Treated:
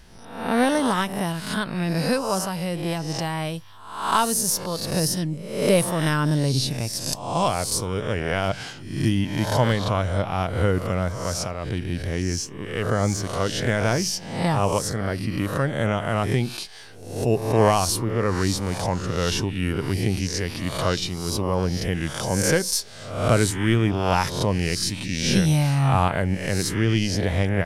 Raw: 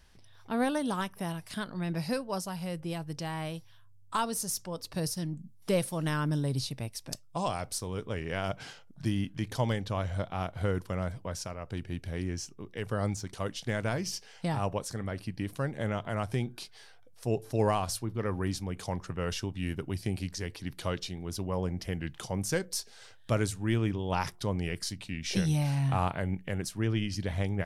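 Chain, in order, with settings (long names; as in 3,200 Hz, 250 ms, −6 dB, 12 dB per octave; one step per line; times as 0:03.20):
peak hold with a rise ahead of every peak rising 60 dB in 0.71 s
level +8 dB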